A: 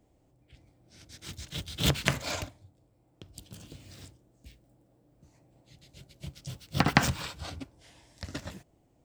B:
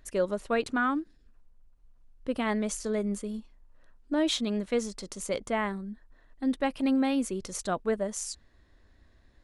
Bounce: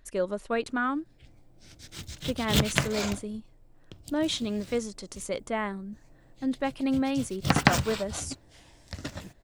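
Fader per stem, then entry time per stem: +1.5, -1.0 dB; 0.70, 0.00 s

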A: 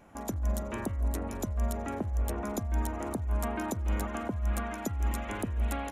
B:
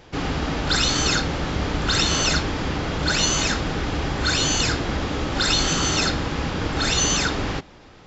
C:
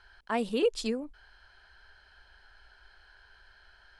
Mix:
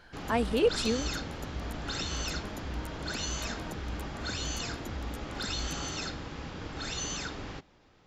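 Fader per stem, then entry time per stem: -9.5, -15.0, +1.5 dB; 0.00, 0.00, 0.00 s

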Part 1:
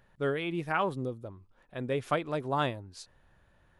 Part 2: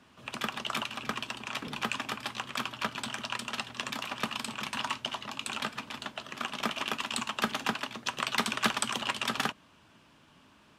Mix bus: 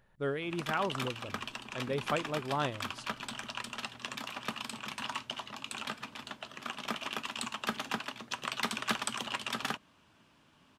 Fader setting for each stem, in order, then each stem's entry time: -3.5, -4.5 dB; 0.00, 0.25 s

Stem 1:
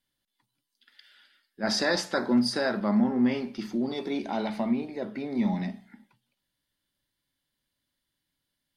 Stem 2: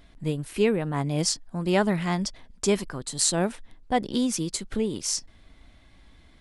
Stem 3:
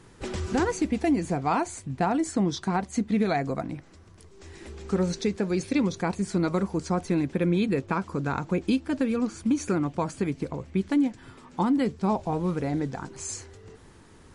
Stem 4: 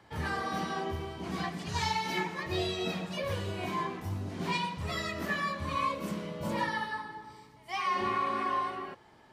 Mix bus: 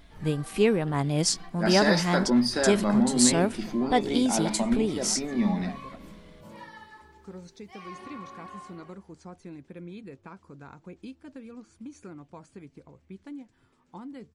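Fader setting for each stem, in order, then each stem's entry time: +1.0, +0.5, -18.0, -13.5 dB; 0.00, 0.00, 2.35, 0.00 s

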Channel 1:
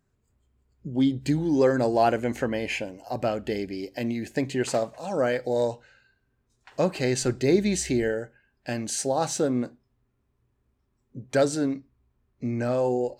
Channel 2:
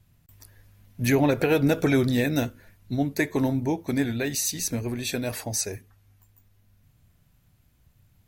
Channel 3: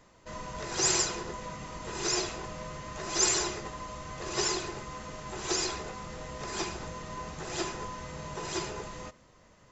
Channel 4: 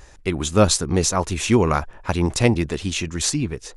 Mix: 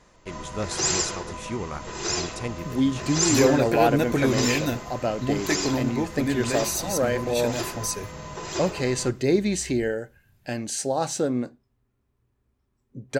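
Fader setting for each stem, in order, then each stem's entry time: 0.0, -1.5, +2.5, -15.0 dB; 1.80, 2.30, 0.00, 0.00 s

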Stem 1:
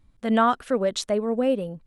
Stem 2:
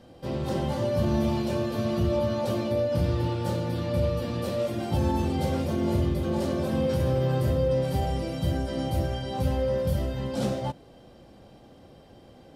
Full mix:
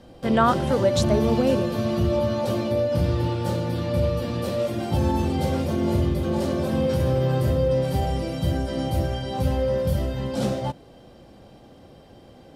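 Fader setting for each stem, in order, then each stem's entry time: +0.5, +3.0 dB; 0.00, 0.00 s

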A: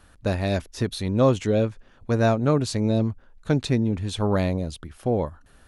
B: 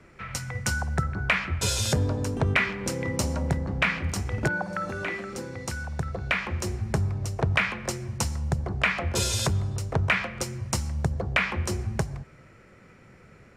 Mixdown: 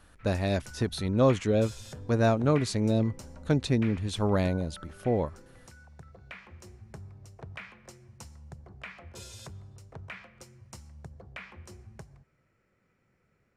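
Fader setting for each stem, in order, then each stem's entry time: -3.5, -19.5 dB; 0.00, 0.00 s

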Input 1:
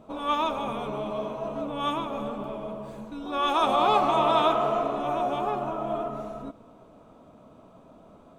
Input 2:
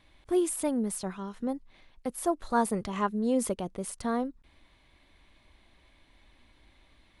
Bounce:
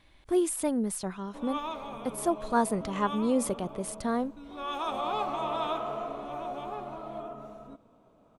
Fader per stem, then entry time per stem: -9.5, +0.5 dB; 1.25, 0.00 s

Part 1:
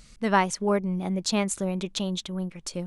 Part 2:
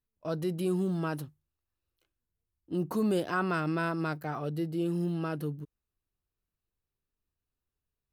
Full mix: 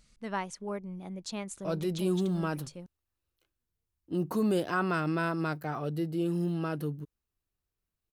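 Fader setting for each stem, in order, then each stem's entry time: -12.5, +0.5 dB; 0.00, 1.40 s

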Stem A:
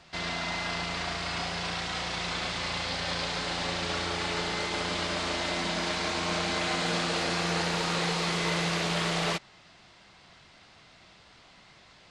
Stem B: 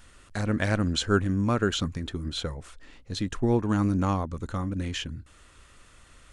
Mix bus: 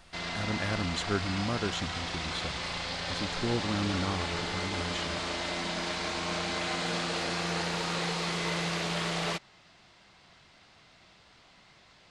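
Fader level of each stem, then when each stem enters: -3.0, -7.5 dB; 0.00, 0.00 s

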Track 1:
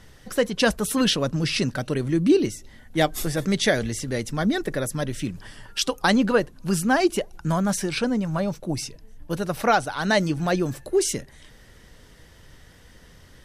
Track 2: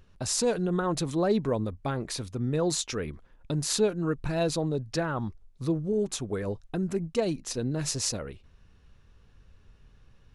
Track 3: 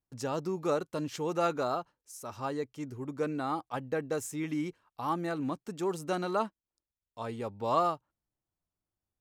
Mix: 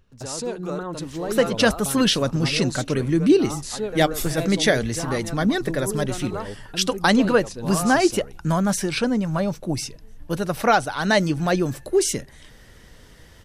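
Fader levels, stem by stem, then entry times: +2.0, -3.5, -2.5 dB; 1.00, 0.00, 0.00 s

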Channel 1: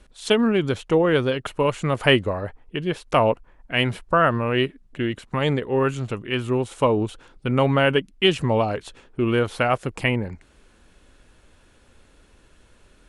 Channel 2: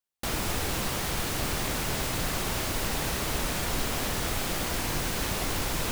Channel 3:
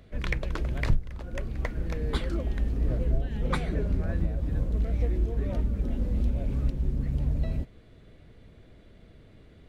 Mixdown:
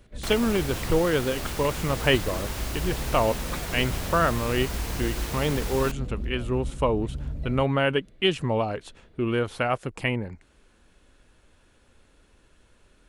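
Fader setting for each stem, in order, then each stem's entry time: -4.5, -4.5, -5.5 dB; 0.00, 0.00, 0.00 s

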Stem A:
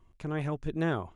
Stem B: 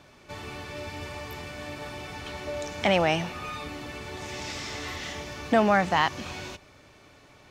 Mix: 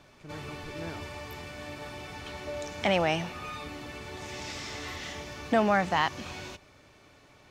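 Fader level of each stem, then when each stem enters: -12.0, -3.0 dB; 0.00, 0.00 s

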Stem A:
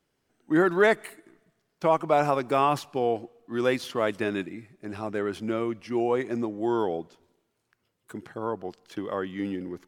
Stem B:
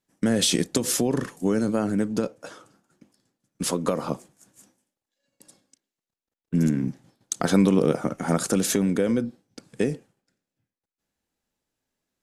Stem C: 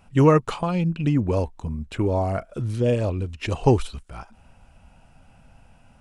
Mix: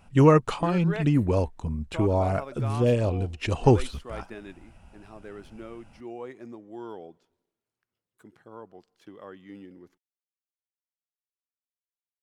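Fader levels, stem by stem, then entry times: -13.5 dB, off, -1.0 dB; 0.10 s, off, 0.00 s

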